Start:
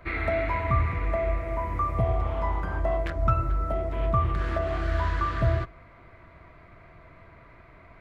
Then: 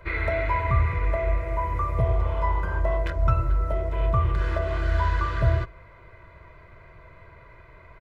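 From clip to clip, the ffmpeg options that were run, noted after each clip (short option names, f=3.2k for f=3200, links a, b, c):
-af "aecho=1:1:2:0.65"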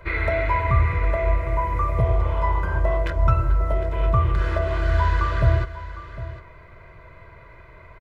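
-af "aecho=1:1:756:0.188,volume=3dB"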